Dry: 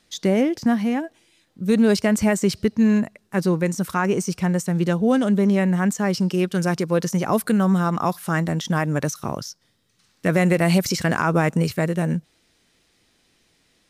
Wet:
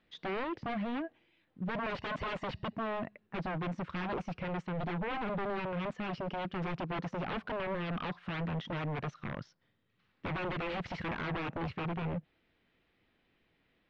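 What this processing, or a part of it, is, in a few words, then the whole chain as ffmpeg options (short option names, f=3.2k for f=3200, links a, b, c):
synthesiser wavefolder: -filter_complex "[0:a]asettb=1/sr,asplit=3[a][b][c];[a]atrim=end=1.864[d];[b]atrim=start=1.86:end=2.73,asetpts=PTS-STARTPTS,afade=t=in:d=0.004:c=qsin,afade=t=out:st=0.866:d=0.004:c=qsin,aecho=1:1:1.1:0.97,atrim=end_sample=38367[e];[c]atrim=start=2.726[f];[d][e]acrossfade=d=0.004:c1=hsin:c2=qsin[g];[g][f]acrossfade=d=0.004:c1=qsin:c2=hsin,aeval=exprs='0.075*(abs(mod(val(0)/0.075+3,4)-2)-1)':c=same,lowpass=f=3k:w=0.5412,lowpass=f=3k:w=1.3066,volume=-8dB"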